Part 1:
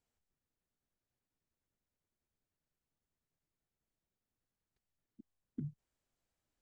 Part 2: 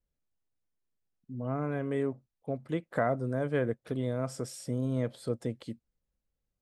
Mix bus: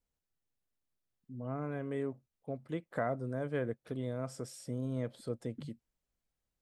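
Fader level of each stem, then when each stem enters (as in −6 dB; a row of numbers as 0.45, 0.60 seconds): −5.0, −5.5 decibels; 0.00, 0.00 seconds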